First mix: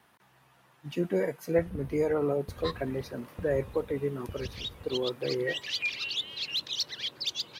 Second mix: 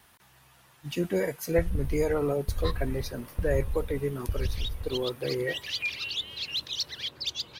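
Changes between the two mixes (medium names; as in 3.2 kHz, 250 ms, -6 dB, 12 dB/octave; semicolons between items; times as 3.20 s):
speech: add treble shelf 2.9 kHz +11.5 dB; master: remove high-pass 140 Hz 12 dB/octave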